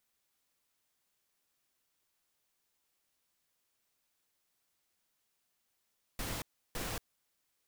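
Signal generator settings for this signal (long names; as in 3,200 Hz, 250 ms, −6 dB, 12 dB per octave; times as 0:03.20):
noise bursts pink, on 0.23 s, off 0.33 s, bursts 2, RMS −38.5 dBFS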